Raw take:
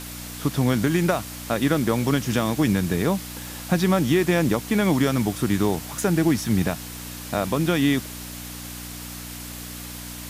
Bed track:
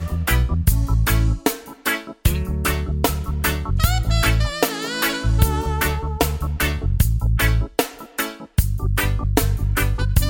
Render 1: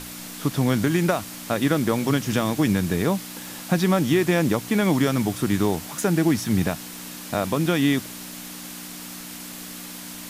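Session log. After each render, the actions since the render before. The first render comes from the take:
hum removal 60 Hz, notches 2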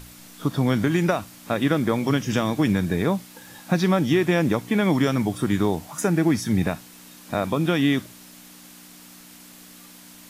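noise reduction from a noise print 9 dB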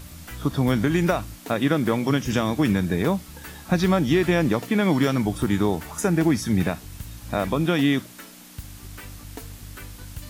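mix in bed track −20.5 dB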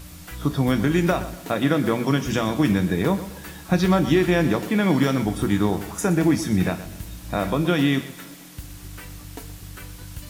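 coupled-rooms reverb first 0.28 s, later 2.6 s, from −19 dB, DRR 9 dB
feedback echo at a low word length 122 ms, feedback 35%, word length 7 bits, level −14 dB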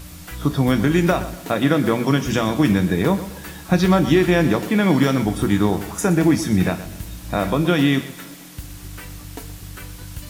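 level +3 dB

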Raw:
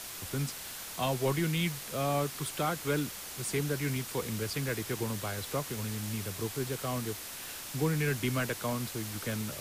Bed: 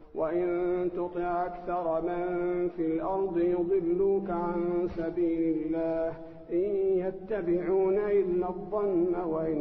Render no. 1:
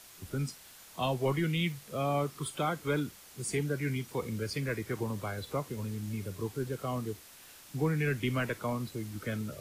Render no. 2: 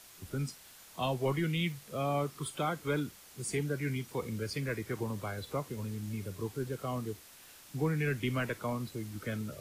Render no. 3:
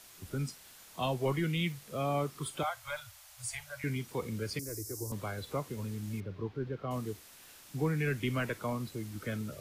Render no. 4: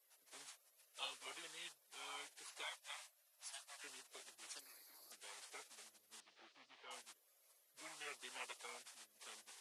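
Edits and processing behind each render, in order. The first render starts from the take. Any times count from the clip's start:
noise reduction from a noise print 11 dB
level −1.5 dB
0:02.63–0:03.84: Chebyshev band-stop filter 120–580 Hz, order 5; 0:04.59–0:05.12: drawn EQ curve 110 Hz 0 dB, 180 Hz −27 dB, 290 Hz −1 dB, 1,500 Hz −17 dB, 3,300 Hz −22 dB, 5,300 Hz +12 dB; 0:06.20–0:06.91: high-frequency loss of the air 280 metres
Chebyshev band-pass filter 780–9,300 Hz, order 3; gate on every frequency bin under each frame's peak −15 dB weak

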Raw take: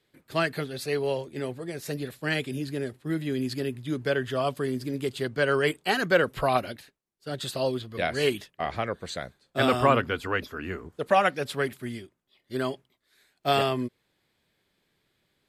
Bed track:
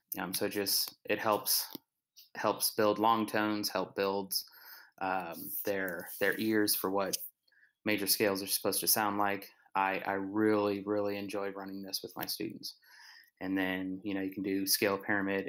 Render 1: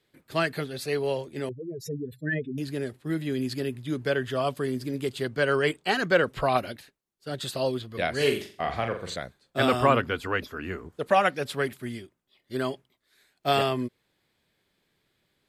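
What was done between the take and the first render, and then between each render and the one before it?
0:01.49–0:02.58: expanding power law on the bin magnitudes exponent 3.4
0:05.56–0:06.56: parametric band 12,000 Hz −9 dB 0.5 octaves
0:08.16–0:09.16: flutter between parallel walls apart 7.3 metres, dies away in 0.39 s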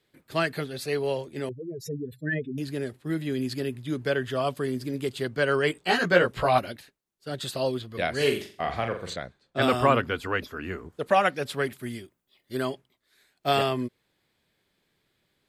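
0:05.74–0:06.59: double-tracking delay 17 ms −2 dB
0:09.13–0:09.62: high-frequency loss of the air 68 metres
0:11.78–0:12.65: high-shelf EQ 11,000 Hz +9.5 dB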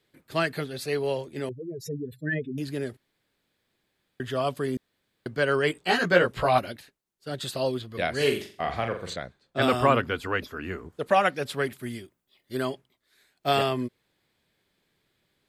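0:02.97–0:04.20: fill with room tone
0:04.77–0:05.26: fill with room tone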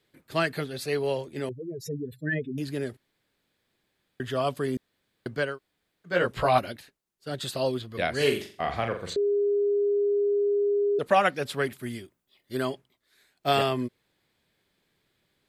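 0:05.47–0:06.16: fill with room tone, crossfade 0.24 s
0:09.16–0:10.99: beep over 407 Hz −21 dBFS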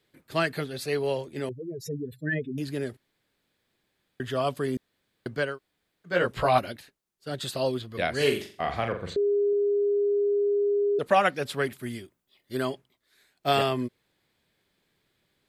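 0:08.92–0:09.53: bass and treble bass +4 dB, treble −9 dB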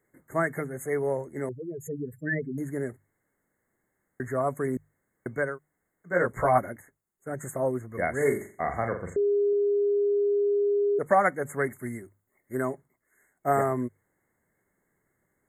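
mains-hum notches 50/100/150 Hz
brick-wall band-stop 2,200–6,400 Hz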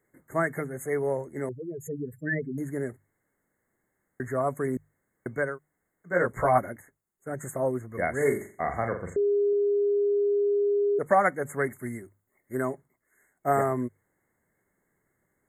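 no processing that can be heard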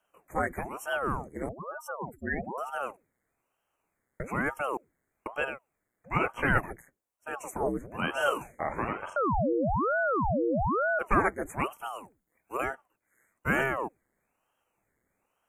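ring modulator whose carrier an LFO sweeps 570 Hz, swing 90%, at 1.1 Hz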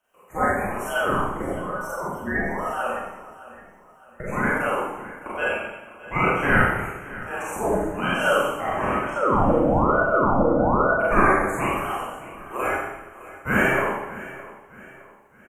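repeating echo 613 ms, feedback 41%, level −17 dB
four-comb reverb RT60 1 s, combs from 30 ms, DRR −7.5 dB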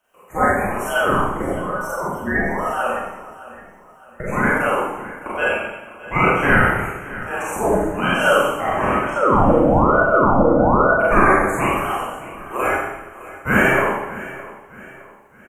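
level +5 dB
brickwall limiter −3 dBFS, peak gain reduction 3 dB

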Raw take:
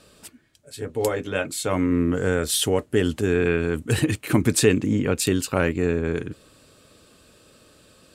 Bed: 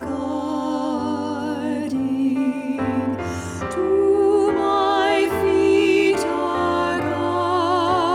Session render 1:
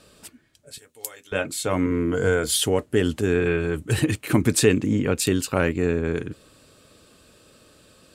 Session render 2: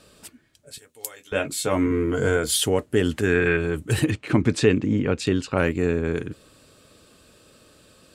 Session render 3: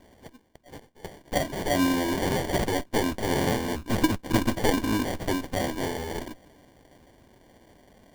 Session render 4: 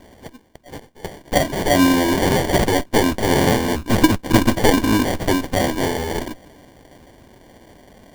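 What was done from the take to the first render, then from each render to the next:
0:00.78–0:01.32: first-order pre-emphasis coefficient 0.97; 0:01.85–0:02.57: EQ curve with evenly spaced ripples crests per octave 1.8, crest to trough 8 dB; 0:03.40–0:03.99: notch comb filter 240 Hz
0:01.19–0:02.37: double-tracking delay 14 ms −6 dB; 0:03.11–0:03.57: parametric band 1,800 Hz +8 dB 0.98 octaves; 0:04.10–0:05.58: high-frequency loss of the air 110 metres
lower of the sound and its delayed copy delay 3.4 ms; sample-rate reduction 1,300 Hz, jitter 0%
level +9 dB; brickwall limiter −2 dBFS, peak gain reduction 1 dB

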